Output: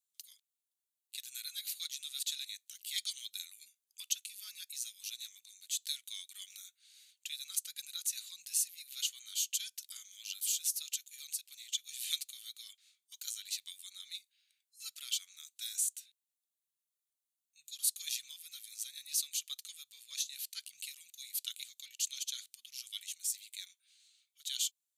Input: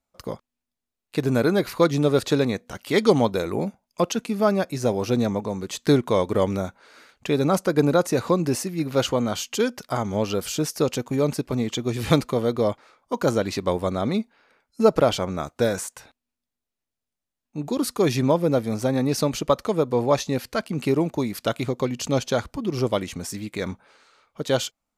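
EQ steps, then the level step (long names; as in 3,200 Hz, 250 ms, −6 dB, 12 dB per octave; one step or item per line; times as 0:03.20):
inverse Chebyshev high-pass filter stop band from 850 Hz, stop band 70 dB
parametric band 5,100 Hz −11 dB 0.53 octaves
+2.5 dB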